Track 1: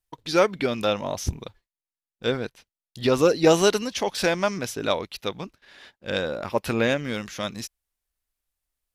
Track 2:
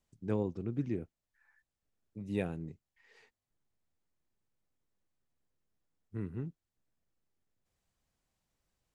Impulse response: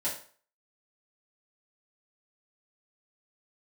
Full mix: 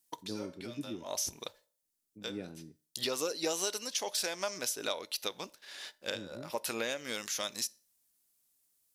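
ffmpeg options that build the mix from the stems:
-filter_complex "[0:a]bass=frequency=250:gain=-14,treble=frequency=4000:gain=14,acompressor=threshold=-32dB:ratio=4,volume=-1.5dB,asplit=2[link_01][link_02];[link_02]volume=-22.5dB[link_03];[1:a]equalizer=frequency=290:width_type=o:width=1.1:gain=9.5,volume=-13dB,asplit=3[link_04][link_05][link_06];[link_05]volume=-21.5dB[link_07];[link_06]apad=whole_len=394401[link_08];[link_01][link_08]sidechaincompress=threshold=-56dB:ratio=8:attack=16:release=115[link_09];[2:a]atrim=start_sample=2205[link_10];[link_03][link_07]amix=inputs=2:normalize=0[link_11];[link_11][link_10]afir=irnorm=-1:irlink=0[link_12];[link_09][link_04][link_12]amix=inputs=3:normalize=0,lowshelf=frequency=69:gain=-8.5"

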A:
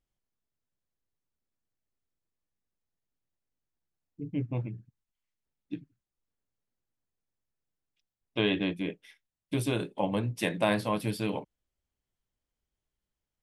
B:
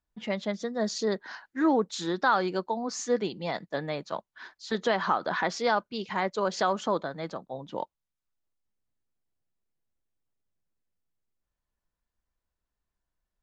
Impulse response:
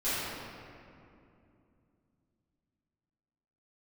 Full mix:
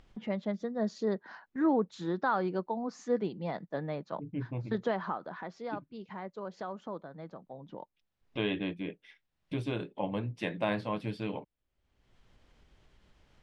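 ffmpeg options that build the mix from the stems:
-filter_complex "[0:a]lowpass=3700,volume=-4.5dB[link_01];[1:a]lowpass=frequency=1100:poles=1,equalizer=frequency=170:width=1.8:gain=3.5,agate=range=-11dB:threshold=-51dB:ratio=16:detection=peak,volume=-3dB,afade=type=out:start_time=4.82:duration=0.51:silence=0.354813[link_02];[link_01][link_02]amix=inputs=2:normalize=0,acompressor=mode=upward:threshold=-38dB:ratio=2.5"

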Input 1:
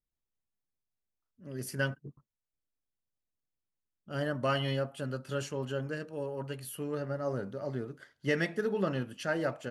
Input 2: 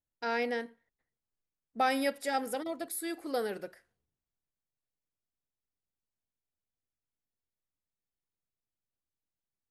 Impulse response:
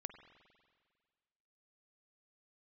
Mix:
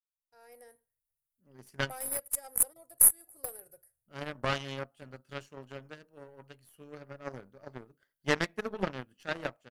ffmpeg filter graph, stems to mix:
-filter_complex "[0:a]aeval=exprs='0.141*(cos(1*acos(clip(val(0)/0.141,-1,1)))-cos(1*PI/2))+0.0447*(cos(3*acos(clip(val(0)/0.141,-1,1)))-cos(3*PI/2))+0.00126*(cos(6*acos(clip(val(0)/0.141,-1,1)))-cos(6*PI/2))+0.00158*(cos(8*acos(clip(val(0)/0.141,-1,1)))-cos(8*PI/2))':channel_layout=same,volume=-5dB[link_01];[1:a]firequalizer=gain_entry='entry(130,0);entry(200,-26);entry(540,-10);entry(840,-15);entry(3300,-23);entry(9700,14)':delay=0.05:min_phase=1,alimiter=limit=-17.5dB:level=0:latency=1:release=260,aeval=exprs='0.188*(cos(1*acos(clip(val(0)/0.188,-1,1)))-cos(1*PI/2))+0.015*(cos(3*acos(clip(val(0)/0.188,-1,1)))-cos(3*PI/2))+0.00596*(cos(4*acos(clip(val(0)/0.188,-1,1)))-cos(4*PI/2))+0.0168*(cos(7*acos(clip(val(0)/0.188,-1,1)))-cos(7*PI/2))':channel_layout=same,adelay=100,volume=0dB[link_02];[link_01][link_02]amix=inputs=2:normalize=0,dynaudnorm=framelen=150:gausssize=7:maxgain=11.5dB"

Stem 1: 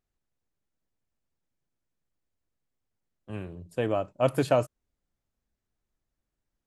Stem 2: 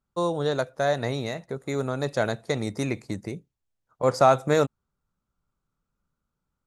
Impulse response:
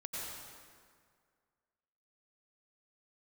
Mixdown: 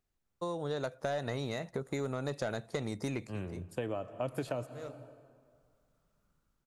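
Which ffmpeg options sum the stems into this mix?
-filter_complex "[0:a]acrossover=split=440[link_01][link_02];[link_02]acompressor=threshold=-25dB:ratio=6[link_03];[link_01][link_03]amix=inputs=2:normalize=0,volume=-0.5dB,asplit=3[link_04][link_05][link_06];[link_05]volume=-17dB[link_07];[1:a]dynaudnorm=framelen=120:gausssize=9:maxgain=11dB,asoftclip=type=tanh:threshold=-8.5dB,adelay=250,volume=-6.5dB[link_08];[link_06]apad=whole_len=304860[link_09];[link_08][link_09]sidechaincompress=threshold=-52dB:ratio=8:attack=44:release=497[link_10];[2:a]atrim=start_sample=2205[link_11];[link_07][link_11]afir=irnorm=-1:irlink=0[link_12];[link_04][link_10][link_12]amix=inputs=3:normalize=0,acompressor=threshold=-34dB:ratio=4"

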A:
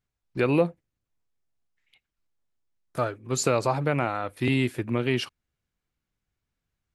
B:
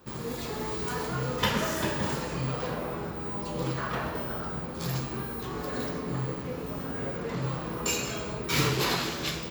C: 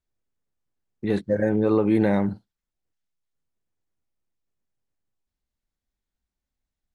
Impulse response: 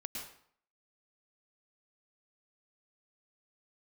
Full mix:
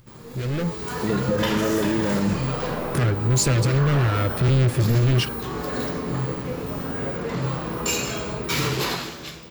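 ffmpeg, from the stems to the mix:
-filter_complex "[0:a]equalizer=frequency=120:width_type=o:width=1.2:gain=13.5,acompressor=mode=upward:threshold=-35dB:ratio=2.5,asoftclip=type=hard:threshold=-25.5dB,volume=-1dB[link_01];[1:a]volume=-7dB[link_02];[2:a]volume=-1dB[link_03];[link_01][link_03]amix=inputs=2:normalize=0,asuperstop=centerf=880:order=4:qfactor=1.3,alimiter=level_in=1dB:limit=-24dB:level=0:latency=1,volume=-1dB,volume=0dB[link_04];[link_02][link_04]amix=inputs=2:normalize=0,dynaudnorm=framelen=130:gausssize=13:maxgain=12.5dB,alimiter=limit=-13dB:level=0:latency=1:release=53"

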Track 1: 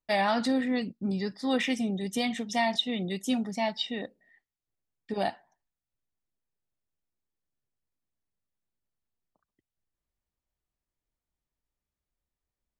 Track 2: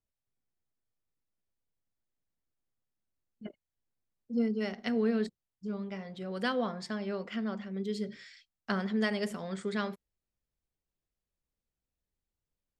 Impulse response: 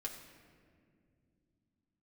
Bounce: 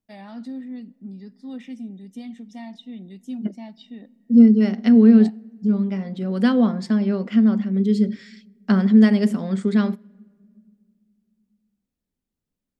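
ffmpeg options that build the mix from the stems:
-filter_complex "[0:a]volume=-20dB,asplit=2[link_01][link_02];[link_02]volume=-15.5dB[link_03];[1:a]volume=1dB,asplit=2[link_04][link_05];[link_05]volume=-21dB[link_06];[2:a]atrim=start_sample=2205[link_07];[link_03][link_06]amix=inputs=2:normalize=0[link_08];[link_08][link_07]afir=irnorm=-1:irlink=0[link_09];[link_01][link_04][link_09]amix=inputs=3:normalize=0,equalizer=frequency=230:width_type=o:width=1.1:gain=15,dynaudnorm=framelen=480:gausssize=13:maxgain=4.5dB"

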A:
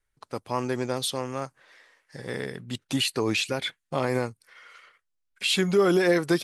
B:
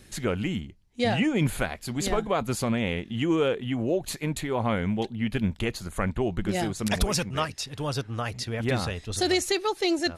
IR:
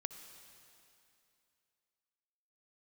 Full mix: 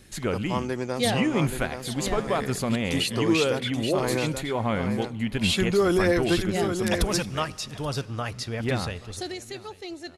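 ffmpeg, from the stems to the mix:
-filter_complex "[0:a]volume=-1dB,asplit=2[link_01][link_02];[link_02]volume=-7dB[link_03];[1:a]volume=-2.5dB,afade=type=out:start_time=8.83:duration=0.51:silence=0.237137,asplit=3[link_04][link_05][link_06];[link_05]volume=-7.5dB[link_07];[link_06]volume=-18dB[link_08];[2:a]atrim=start_sample=2205[link_09];[link_07][link_09]afir=irnorm=-1:irlink=0[link_10];[link_03][link_08]amix=inputs=2:normalize=0,aecho=0:1:829:1[link_11];[link_01][link_04][link_10][link_11]amix=inputs=4:normalize=0"

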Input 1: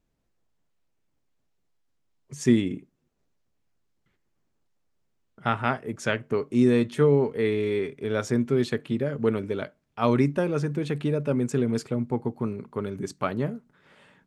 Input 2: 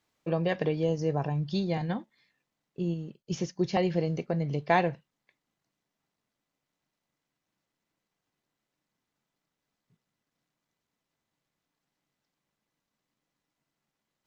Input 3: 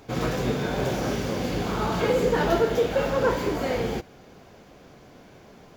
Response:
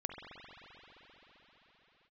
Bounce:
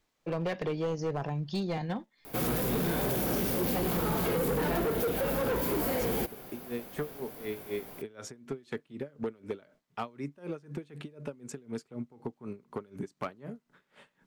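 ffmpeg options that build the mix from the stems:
-filter_complex "[0:a]acompressor=threshold=-30dB:ratio=10,aeval=exprs='val(0)*pow(10,-24*(0.5-0.5*cos(2*PI*4*n/s))/20)':channel_layout=same,volume=2dB[link_01];[1:a]volume=-0.5dB[link_02];[2:a]aexciter=amount=7.7:drive=7.6:freq=9200,adelay=2250,volume=1dB[link_03];[link_01][link_02][link_03]amix=inputs=3:normalize=0,equalizer=frequency=85:width_type=o:width=1.7:gain=-6.5,acrossover=split=370[link_04][link_05];[link_05]acompressor=threshold=-28dB:ratio=6[link_06];[link_04][link_06]amix=inputs=2:normalize=0,asoftclip=type=hard:threshold=-26.5dB"

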